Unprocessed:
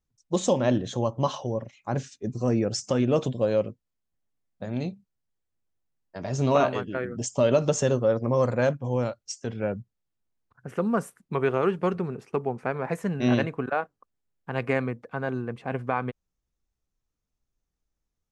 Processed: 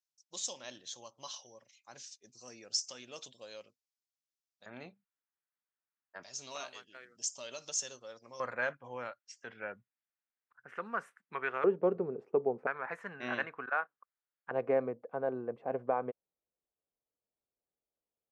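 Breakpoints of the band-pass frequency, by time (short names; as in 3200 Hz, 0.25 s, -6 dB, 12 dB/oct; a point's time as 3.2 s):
band-pass, Q 1.9
5400 Hz
from 4.66 s 1500 Hz
from 6.23 s 5600 Hz
from 8.4 s 1700 Hz
from 11.64 s 480 Hz
from 12.67 s 1500 Hz
from 14.51 s 560 Hz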